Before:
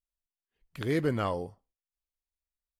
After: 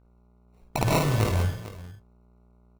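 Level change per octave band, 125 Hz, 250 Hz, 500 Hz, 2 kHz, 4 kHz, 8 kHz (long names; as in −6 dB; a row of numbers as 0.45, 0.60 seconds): +11.0, +2.0, +2.0, +6.0, +10.0, +18.0 decibels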